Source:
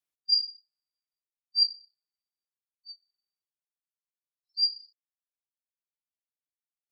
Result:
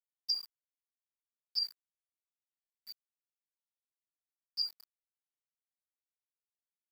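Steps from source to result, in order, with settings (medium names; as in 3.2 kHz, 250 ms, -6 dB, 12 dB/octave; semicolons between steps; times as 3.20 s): touch-sensitive flanger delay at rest 3.5 ms, full sweep at -25.5 dBFS; small samples zeroed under -47.5 dBFS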